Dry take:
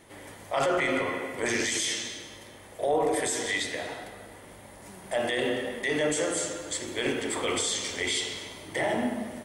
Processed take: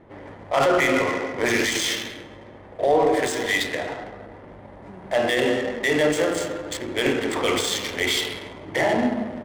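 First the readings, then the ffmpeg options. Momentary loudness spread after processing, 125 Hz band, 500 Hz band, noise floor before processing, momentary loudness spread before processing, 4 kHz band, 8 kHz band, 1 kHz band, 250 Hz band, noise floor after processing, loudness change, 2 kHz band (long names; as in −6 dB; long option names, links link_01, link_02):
20 LU, +7.0 dB, +7.0 dB, −49 dBFS, 20 LU, +5.0 dB, 0.0 dB, +7.0 dB, +7.0 dB, −44 dBFS, +6.0 dB, +6.5 dB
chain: -af "adynamicsmooth=sensitivity=7:basefreq=1100,volume=7dB"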